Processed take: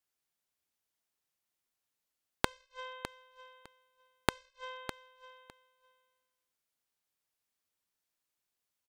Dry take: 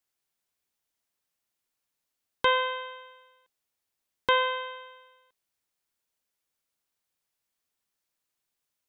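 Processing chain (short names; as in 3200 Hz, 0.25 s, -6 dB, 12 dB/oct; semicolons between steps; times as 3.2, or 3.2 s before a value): added harmonics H 7 -15 dB, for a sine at -10 dBFS; flipped gate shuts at -26 dBFS, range -38 dB; feedback echo 0.606 s, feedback 16%, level -11.5 dB; gain +8.5 dB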